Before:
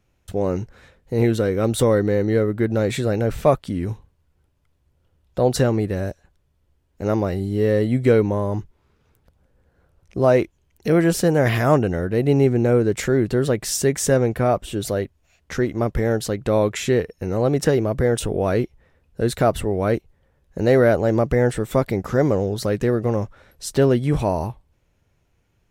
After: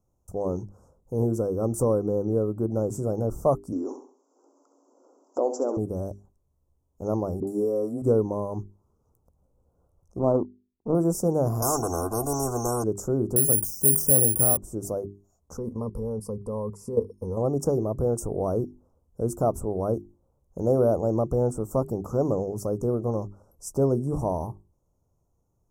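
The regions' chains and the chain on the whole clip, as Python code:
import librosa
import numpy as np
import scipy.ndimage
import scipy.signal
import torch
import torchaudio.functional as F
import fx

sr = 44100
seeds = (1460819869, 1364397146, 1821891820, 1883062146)

y = fx.chain(x, sr, fx.brickwall_bandpass(low_hz=240.0, high_hz=7700.0),
    fx.room_flutter(wall_m=11.6, rt60_s=0.4),
    fx.band_squash(depth_pct=70), at=(3.72, 5.77))
y = fx.chain(y, sr, fx.highpass(hz=300.0, slope=12),
    fx.dispersion(late='highs', ms=70.0, hz=620.0),
    fx.band_squash(depth_pct=100), at=(7.4, 8.02))
y = fx.chain(y, sr, fx.lowpass(hz=1200.0, slope=12),
    fx.peak_eq(hz=250.0, db=7.0, octaves=0.71),
    fx.power_curve(exponent=1.4), at=(10.19, 10.95))
y = fx.chain(y, sr, fx.comb(ms=2.7, depth=0.93),
    fx.spectral_comp(ratio=4.0), at=(11.62, 12.84))
y = fx.chain(y, sr, fx.curve_eq(hz=(140.0, 1100.0, 1900.0, 3900.0), db=(0, -7, 11, -5)),
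    fx.resample_bad(factor=4, down='filtered', up='zero_stuff'),
    fx.sustainer(db_per_s=88.0), at=(13.36, 14.57))
y = fx.chain(y, sr, fx.ripple_eq(per_octave=0.91, db=14),
    fx.level_steps(step_db=12), at=(15.57, 17.37))
y = scipy.signal.sosfilt(scipy.signal.cheby2(4, 40, [1700.0, 4100.0], 'bandstop', fs=sr, output='sos'), y)
y = fx.hum_notches(y, sr, base_hz=50, count=8)
y = F.gain(torch.from_numpy(y), -5.5).numpy()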